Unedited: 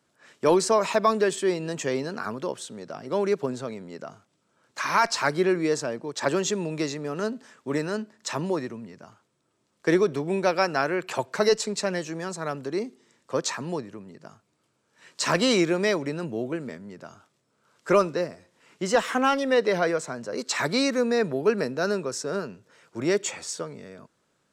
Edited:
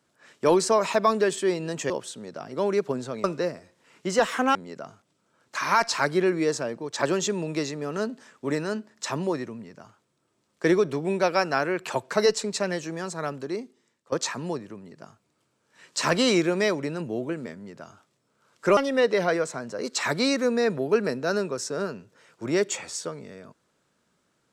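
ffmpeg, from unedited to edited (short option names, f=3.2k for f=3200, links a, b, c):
-filter_complex "[0:a]asplit=6[a][b][c][d][e][f];[a]atrim=end=1.902[g];[b]atrim=start=2.438:end=3.782[h];[c]atrim=start=17.998:end=19.312[i];[d]atrim=start=3.778:end=13.35,asetpts=PTS-STARTPTS,afade=t=out:st=8.742:d=0.83:silence=0.149624[j];[e]atrim=start=13.35:end=18.002,asetpts=PTS-STARTPTS,afade=t=in:d=0.004:c=hsin:silence=0.149624[k];[f]atrim=start=19.308[l];[g][h]acrossfade=d=0.004:c1=hsin:c2=hsin[m];[m][i]acrossfade=d=0.004:c1=hsin:c2=hsin[n];[j][k]concat=n=2:v=0:a=1[o];[n][o]acrossfade=d=0.004:c1=hsin:c2=hsin[p];[p][l]acrossfade=d=0.004:c1=hsin:c2=hsin"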